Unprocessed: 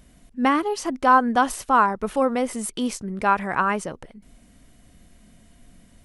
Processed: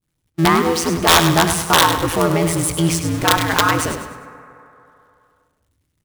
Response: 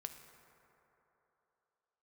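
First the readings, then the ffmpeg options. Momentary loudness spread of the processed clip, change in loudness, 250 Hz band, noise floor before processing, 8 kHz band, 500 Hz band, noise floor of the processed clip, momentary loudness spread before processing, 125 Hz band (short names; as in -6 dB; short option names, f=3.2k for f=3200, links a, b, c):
8 LU, +6.0 dB, +5.5 dB, -54 dBFS, +14.0 dB, +6.0 dB, -72 dBFS, 10 LU, +19.0 dB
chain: -filter_complex "[0:a]aeval=exprs='val(0)+0.5*0.0562*sgn(val(0))':c=same,agate=range=-56dB:threshold=-27dB:ratio=16:detection=peak,equalizer=f=630:t=o:w=0.56:g=-8,aeval=exprs='val(0)*sin(2*PI*83*n/s)':c=same,aeval=exprs='(mod(3.55*val(0)+1,2)-1)/3.55':c=same,aecho=1:1:101|202|303|404:0.355|0.135|0.0512|0.0195,asplit=2[a][b];[1:a]atrim=start_sample=2205,asetrate=48510,aresample=44100[c];[b][c]afir=irnorm=-1:irlink=0,volume=4.5dB[d];[a][d]amix=inputs=2:normalize=0,volume=2dB"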